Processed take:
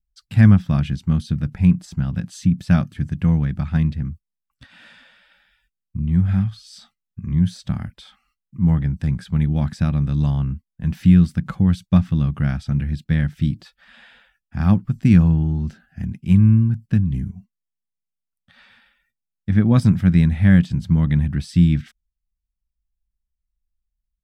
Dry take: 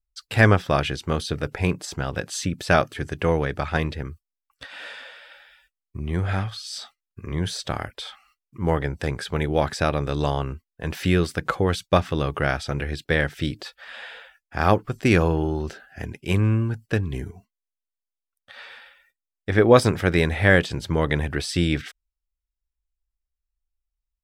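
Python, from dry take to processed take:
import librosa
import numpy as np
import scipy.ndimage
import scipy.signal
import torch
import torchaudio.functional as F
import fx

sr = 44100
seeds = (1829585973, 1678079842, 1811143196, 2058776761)

y = fx.low_shelf_res(x, sr, hz=290.0, db=13.5, q=3.0)
y = y * librosa.db_to_amplitude(-9.0)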